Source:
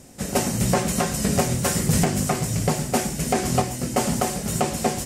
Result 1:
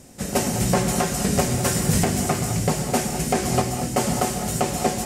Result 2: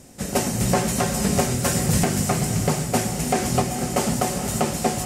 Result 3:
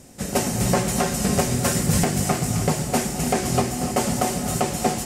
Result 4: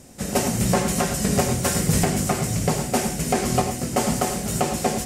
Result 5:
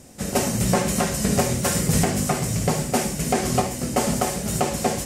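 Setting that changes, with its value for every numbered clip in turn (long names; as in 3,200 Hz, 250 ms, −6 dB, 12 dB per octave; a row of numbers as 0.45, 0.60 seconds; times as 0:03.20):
reverb whose tail is shaped and stops, gate: 230, 510, 340, 130, 90 milliseconds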